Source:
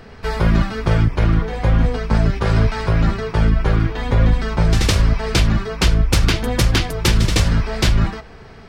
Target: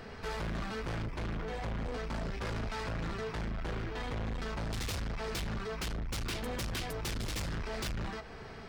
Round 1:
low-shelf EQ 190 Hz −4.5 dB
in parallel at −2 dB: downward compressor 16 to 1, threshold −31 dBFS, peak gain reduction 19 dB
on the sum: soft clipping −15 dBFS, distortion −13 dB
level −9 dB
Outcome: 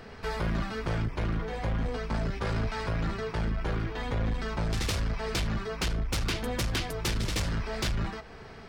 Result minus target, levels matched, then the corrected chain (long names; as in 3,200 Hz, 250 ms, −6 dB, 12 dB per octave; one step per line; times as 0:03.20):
soft clipping: distortion −7 dB
low-shelf EQ 190 Hz −4.5 dB
in parallel at −2 dB: downward compressor 16 to 1, threshold −31 dBFS, peak gain reduction 19 dB
on the sum: soft clipping −25 dBFS, distortion −5 dB
level −9 dB